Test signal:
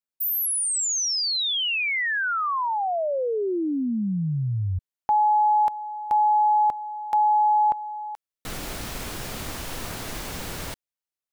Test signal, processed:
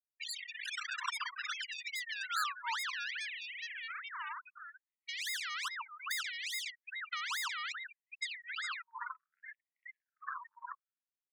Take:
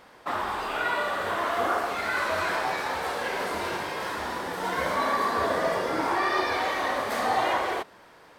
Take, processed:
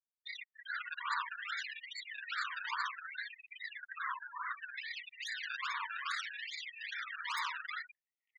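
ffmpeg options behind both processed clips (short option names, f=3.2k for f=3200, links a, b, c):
-af "aecho=1:1:1095|2190|3285:0.376|0.0752|0.015,acrusher=samples=29:mix=1:aa=0.000001:lfo=1:lforange=29:lforate=2.4,afftfilt=real='re*gte(hypot(re,im),0.0398)':imag='im*gte(hypot(re,im),0.0398)':win_size=1024:overlap=0.75,lowshelf=f=350:g=-11.5,alimiter=limit=-21dB:level=0:latency=1:release=28,acompressor=threshold=-42dB:ratio=5:attack=66:release=167:knee=1:detection=rms,highpass=f=70:w=0.5412,highpass=f=70:w=1.3066,afftfilt=real='re*gte(b*sr/1024,900*pow(1900/900,0.5+0.5*sin(2*PI*0.64*pts/sr)))':imag='im*gte(b*sr/1024,900*pow(1900/900,0.5+0.5*sin(2*PI*0.64*pts/sr)))':win_size=1024:overlap=0.75,volume=8dB"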